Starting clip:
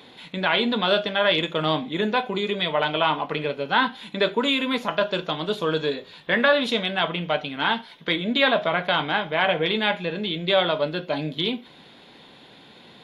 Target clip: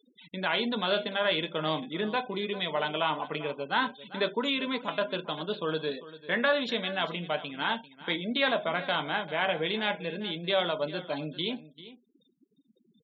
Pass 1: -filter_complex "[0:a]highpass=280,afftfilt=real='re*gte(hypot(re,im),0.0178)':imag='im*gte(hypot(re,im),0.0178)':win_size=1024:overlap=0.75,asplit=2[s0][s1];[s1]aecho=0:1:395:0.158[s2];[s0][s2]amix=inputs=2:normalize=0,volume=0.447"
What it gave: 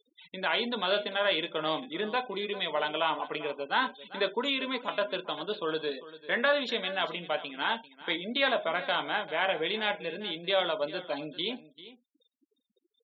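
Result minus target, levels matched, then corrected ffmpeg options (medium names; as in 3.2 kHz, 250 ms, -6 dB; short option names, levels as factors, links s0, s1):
125 Hz band -8.0 dB
-filter_complex "[0:a]highpass=110,afftfilt=real='re*gte(hypot(re,im),0.0178)':imag='im*gte(hypot(re,im),0.0178)':win_size=1024:overlap=0.75,asplit=2[s0][s1];[s1]aecho=0:1:395:0.158[s2];[s0][s2]amix=inputs=2:normalize=0,volume=0.447"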